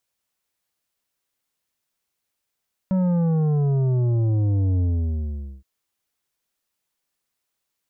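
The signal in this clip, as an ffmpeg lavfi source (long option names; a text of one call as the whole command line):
ffmpeg -f lavfi -i "aevalsrc='0.119*clip((2.72-t)/0.83,0,1)*tanh(2.82*sin(2*PI*190*2.72/log(65/190)*(exp(log(65/190)*t/2.72)-1)))/tanh(2.82)':duration=2.72:sample_rate=44100" out.wav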